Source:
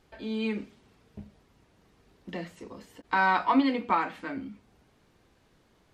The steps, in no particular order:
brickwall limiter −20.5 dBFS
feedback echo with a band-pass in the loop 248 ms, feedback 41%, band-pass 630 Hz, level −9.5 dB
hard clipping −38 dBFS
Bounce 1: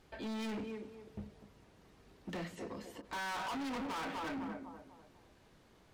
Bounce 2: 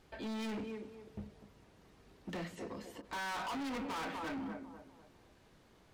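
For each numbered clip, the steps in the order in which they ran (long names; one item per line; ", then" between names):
feedback echo with a band-pass in the loop, then brickwall limiter, then hard clipping
brickwall limiter, then feedback echo with a band-pass in the loop, then hard clipping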